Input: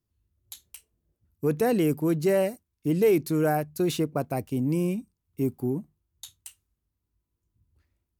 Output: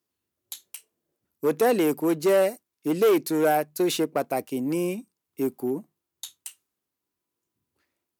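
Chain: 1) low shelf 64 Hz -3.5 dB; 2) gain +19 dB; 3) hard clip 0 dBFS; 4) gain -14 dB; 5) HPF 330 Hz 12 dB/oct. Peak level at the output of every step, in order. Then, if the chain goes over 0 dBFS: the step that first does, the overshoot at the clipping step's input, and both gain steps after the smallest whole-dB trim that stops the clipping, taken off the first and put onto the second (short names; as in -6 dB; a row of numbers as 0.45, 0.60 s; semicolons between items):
-13.0, +6.0, 0.0, -14.0, -9.5 dBFS; step 2, 6.0 dB; step 2 +13 dB, step 4 -8 dB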